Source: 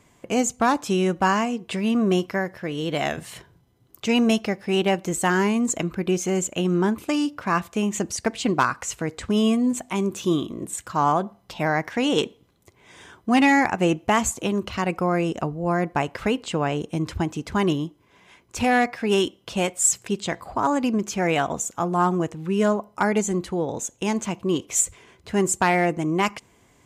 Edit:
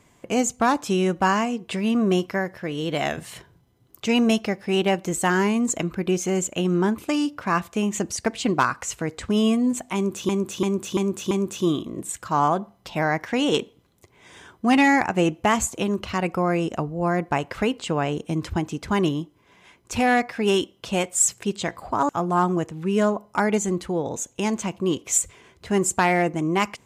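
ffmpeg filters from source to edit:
-filter_complex "[0:a]asplit=6[a][b][c][d][e][f];[a]atrim=end=10.292[g];[b]atrim=start=9.948:end=10.292[h];[c]atrim=start=9.948:end=10.292[i];[d]atrim=start=9.948:end=10.292[j];[e]atrim=start=9.948:end=20.732[k];[f]atrim=start=21.718[l];[g][h]acrossfade=d=0.004:c1=hsin:c2=hsin[m];[m][i]acrossfade=d=0.004:c1=hsin:c2=hsin[n];[n][j]acrossfade=d=0.004:c1=hsin:c2=hsin[o];[o][k]acrossfade=d=0.004:c1=hsin:c2=hsin[p];[p][l]acrossfade=d=0.004:c1=hsin:c2=hsin"

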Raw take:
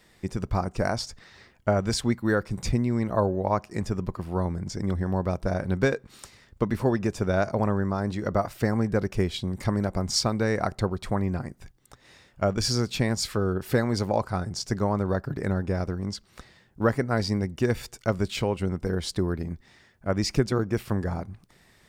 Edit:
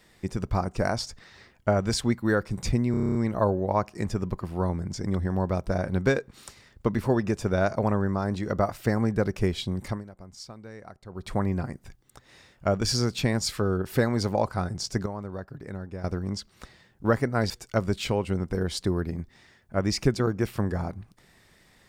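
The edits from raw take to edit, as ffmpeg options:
-filter_complex "[0:a]asplit=14[a][b][c][d][e][f][g][h][i][j][k][l][m][n];[a]atrim=end=2.942[o];[b]atrim=start=2.908:end=2.942[p];[c]atrim=start=2.908:end=2.942[q];[d]atrim=start=2.908:end=2.942[r];[e]atrim=start=2.908:end=2.942[s];[f]atrim=start=2.908:end=2.942[t];[g]atrim=start=2.908:end=2.942[u];[h]atrim=start=2.908:end=2.942[v];[i]atrim=start=2.908:end=9.8,asetpts=PTS-STARTPTS,afade=t=out:st=6.662:d=0.23:silence=0.11885[w];[j]atrim=start=9.8:end=10.85,asetpts=PTS-STARTPTS,volume=-18.5dB[x];[k]atrim=start=10.85:end=14.822,asetpts=PTS-STARTPTS,afade=t=in:d=0.23:silence=0.11885[y];[l]atrim=start=14.818:end=15.802,asetpts=PTS-STARTPTS,volume=-10dB[z];[m]atrim=start=15.798:end=17.262[aa];[n]atrim=start=17.818[ab];[o][p]acrossfade=d=0.004:c1=hsin:c2=hsin[ac];[ac][q]acrossfade=d=0.004:c1=hsin:c2=hsin[ad];[ad][r]acrossfade=d=0.004:c1=hsin:c2=hsin[ae];[ae][s]acrossfade=d=0.004:c1=hsin:c2=hsin[af];[af][t]acrossfade=d=0.004:c1=hsin:c2=hsin[ag];[ag][u]acrossfade=d=0.004:c1=hsin:c2=hsin[ah];[ah][v]acrossfade=d=0.004:c1=hsin:c2=hsin[ai];[w][x][y]concat=n=3:v=0:a=1[aj];[ai][aj]acrossfade=d=0.004:c1=hsin:c2=hsin[ak];[ak][z]acrossfade=d=0.004:c1=hsin:c2=hsin[al];[al][aa]acrossfade=d=0.004:c1=hsin:c2=hsin[am];[am][ab]acrossfade=d=0.004:c1=hsin:c2=hsin"

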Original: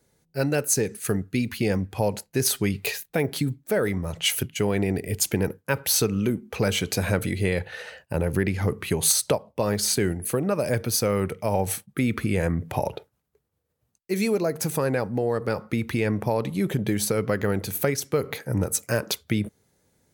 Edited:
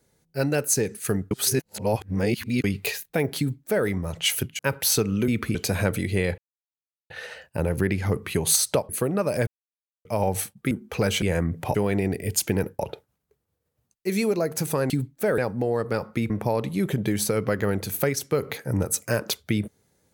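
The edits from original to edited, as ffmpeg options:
-filter_complex "[0:a]asplit=17[a][b][c][d][e][f][g][h][i][j][k][l][m][n][o][p][q];[a]atrim=end=1.312[r];[b]atrim=start=1.308:end=2.642,asetpts=PTS-STARTPTS,areverse[s];[c]atrim=start=2.638:end=4.592[t];[d]atrim=start=5.628:end=6.322[u];[e]atrim=start=12.028:end=12.302[v];[f]atrim=start=6.828:end=7.66,asetpts=PTS-STARTPTS,afade=t=out:st=0.828:d=0.004:c=hsin,apad=pad_dur=0.72[w];[g]atrim=start=7.66:end=9.452,asetpts=PTS-STARTPTS,afade=t=in:d=0.004:c=hsin[x];[h]atrim=start=10.208:end=10.79,asetpts=PTS-STARTPTS,afade=t=out:st=0.578:d=0.004:c=hsin[y];[i]atrim=start=10.79:end=11.37,asetpts=PTS-STARTPTS,volume=0[z];[j]atrim=start=11.37:end=12.032,asetpts=PTS-STARTPTS,afade=t=in:d=0.004:c=hsin[aa];[k]atrim=start=6.318:end=6.832[ab];[l]atrim=start=12.298:end=12.832[ac];[m]atrim=start=4.588:end=5.632[ad];[n]atrim=start=12.828:end=14.942[ae];[o]atrim=start=3.378:end=3.862[af];[p]atrim=start=14.938:end=15.862[ag];[q]atrim=start=16.108[ah];[r][s]acrossfade=d=0.004:c1=hsin:c2=hsin[ai];[ai][t]acrossfade=d=0.004:c1=hsin:c2=hsin[aj];[aj][u]acrossfade=d=0.004:c1=hsin:c2=hsin[ak];[ak][v]acrossfade=d=0.004:c1=hsin:c2=hsin[al];[w][x]concat=n=2:v=0:a=1[am];[al][am]acrossfade=d=0.004:c1=hsin:c2=hsin[an];[y][z][aa]concat=n=3:v=0:a=1[ao];[an][ao]acrossfade=d=0.004:c1=hsin:c2=hsin[ap];[ap][ab]acrossfade=d=0.004:c1=hsin:c2=hsin[aq];[aq][ac]acrossfade=d=0.004:c1=hsin:c2=hsin[ar];[ar][ad]acrossfade=d=0.004:c1=hsin:c2=hsin[as];[as][ae]acrossfade=d=0.004:c1=hsin:c2=hsin[at];[at][af]acrossfade=d=0.004:c1=hsin:c2=hsin[au];[au][ag]acrossfade=d=0.004:c1=hsin:c2=hsin[av];[av][ah]acrossfade=d=0.004:c1=hsin:c2=hsin"

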